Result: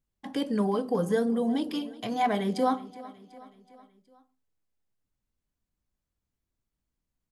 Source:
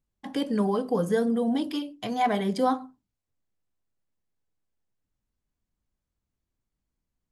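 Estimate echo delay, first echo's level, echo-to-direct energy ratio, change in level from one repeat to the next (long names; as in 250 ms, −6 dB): 372 ms, −19.0 dB, −17.5 dB, −5.5 dB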